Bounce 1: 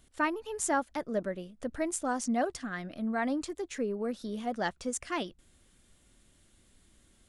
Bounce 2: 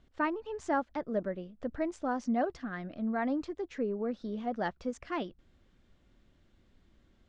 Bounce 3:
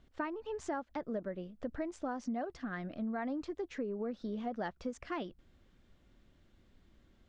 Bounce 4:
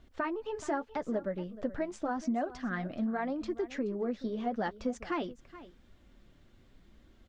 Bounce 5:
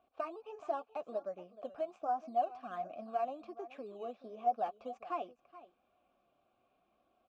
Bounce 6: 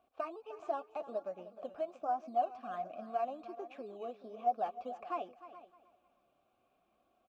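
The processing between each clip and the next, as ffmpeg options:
ffmpeg -i in.wav -af "lowpass=frequency=5800:width=0.5412,lowpass=frequency=5800:width=1.3066,highshelf=frequency=2600:gain=-11.5" out.wav
ffmpeg -i in.wav -af "acompressor=threshold=-34dB:ratio=6" out.wav
ffmpeg -i in.wav -af "flanger=delay=2.7:depth=5.9:regen=-45:speed=0.84:shape=triangular,aecho=1:1:426:0.15,volume=8.5dB" out.wav
ffmpeg -i in.wav -filter_complex "[0:a]asplit=2[link_01][link_02];[link_02]acrusher=samples=10:mix=1:aa=0.000001:lfo=1:lforange=6:lforate=1.3,volume=-7dB[link_03];[link_01][link_03]amix=inputs=2:normalize=0,asplit=3[link_04][link_05][link_06];[link_04]bandpass=frequency=730:width_type=q:width=8,volume=0dB[link_07];[link_05]bandpass=frequency=1090:width_type=q:width=8,volume=-6dB[link_08];[link_06]bandpass=frequency=2440:width_type=q:width=8,volume=-9dB[link_09];[link_07][link_08][link_09]amix=inputs=3:normalize=0,volume=2.5dB" out.wav
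ffmpeg -i in.wav -af "aecho=1:1:306|612|918:0.168|0.042|0.0105" out.wav

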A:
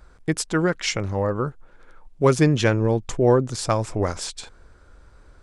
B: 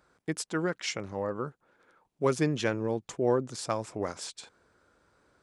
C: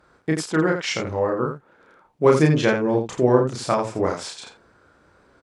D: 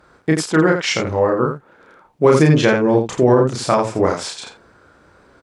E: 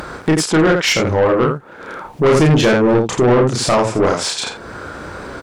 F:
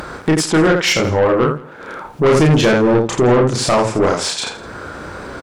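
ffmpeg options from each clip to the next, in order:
ffmpeg -i in.wav -af "highpass=160,volume=-8.5dB" out.wav
ffmpeg -i in.wav -af "aemphasis=mode=reproduction:type=cd,aecho=1:1:32.07|84.55:0.794|0.447,volume=8dB" out.wav
ffmpeg -i in.wav -af "alimiter=level_in=7dB:limit=-1dB:release=50:level=0:latency=1,volume=-1dB" out.wav
ffmpeg -i in.wav -filter_complex "[0:a]asplit=2[link_01][link_02];[link_02]acompressor=mode=upward:threshold=-15dB:ratio=2.5,volume=2dB[link_03];[link_01][link_03]amix=inputs=2:normalize=0,asoftclip=type=tanh:threshold=-7dB,volume=-1dB" out.wav
ffmpeg -i in.wav -af "aecho=1:1:166:0.0891" out.wav

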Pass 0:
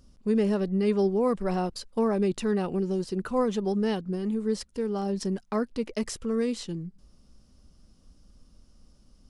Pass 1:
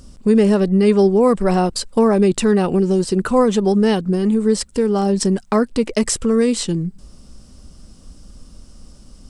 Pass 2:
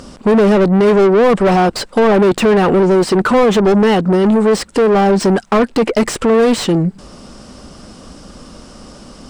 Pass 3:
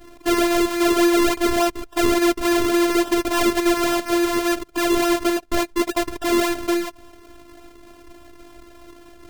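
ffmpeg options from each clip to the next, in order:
ffmpeg -i in.wav -filter_complex "[0:a]equalizer=frequency=8100:width=4.5:gain=10,asplit=2[link_01][link_02];[link_02]acompressor=threshold=-32dB:ratio=6,volume=0.5dB[link_03];[link_01][link_03]amix=inputs=2:normalize=0,volume=8.5dB" out.wav
ffmpeg -i in.wav -filter_complex "[0:a]asplit=2[link_01][link_02];[link_02]highpass=frequency=720:poles=1,volume=28dB,asoftclip=type=tanh:threshold=-3.5dB[link_03];[link_01][link_03]amix=inputs=2:normalize=0,lowpass=frequency=1400:poles=1,volume=-6dB" out.wav
ffmpeg -i in.wav -af "acrusher=samples=39:mix=1:aa=0.000001:lfo=1:lforange=39:lforate=3.5,afftfilt=real='hypot(re,im)*cos(PI*b)':imag='0':win_size=512:overlap=0.75,volume=-4dB" out.wav

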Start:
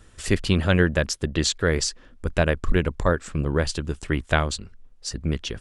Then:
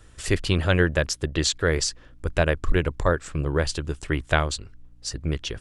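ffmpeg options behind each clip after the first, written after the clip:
ffmpeg -i in.wav -af "aeval=exprs='val(0)+0.00224*(sin(2*PI*60*n/s)+sin(2*PI*2*60*n/s)/2+sin(2*PI*3*60*n/s)/3+sin(2*PI*4*60*n/s)/4+sin(2*PI*5*60*n/s)/5)':channel_layout=same,equalizer=frequency=210:width_type=o:width=0.35:gain=-11" out.wav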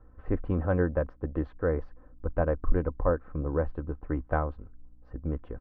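ffmpeg -i in.wav -af "lowpass=frequency=1200:width=0.5412,lowpass=frequency=1200:width=1.3066,aecho=1:1:3.9:0.45,volume=-4.5dB" out.wav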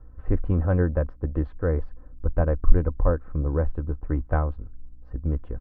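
ffmpeg -i in.wav -af "lowshelf=frequency=150:gain=10" out.wav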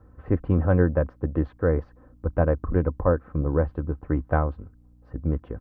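ffmpeg -i in.wav -af "highpass=90,volume=3.5dB" out.wav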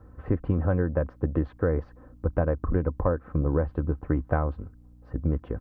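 ffmpeg -i in.wav -af "acompressor=threshold=-23dB:ratio=6,volume=2.5dB" out.wav

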